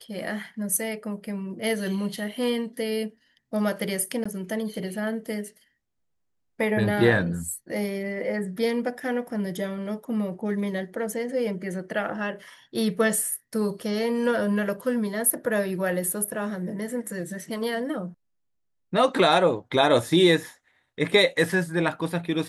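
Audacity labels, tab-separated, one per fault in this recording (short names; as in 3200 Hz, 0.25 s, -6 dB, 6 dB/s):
4.240000	4.250000	gap 15 ms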